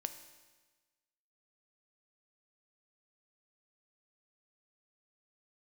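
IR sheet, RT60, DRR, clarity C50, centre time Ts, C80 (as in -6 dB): 1.3 s, 8.5 dB, 11.0 dB, 13 ms, 12.5 dB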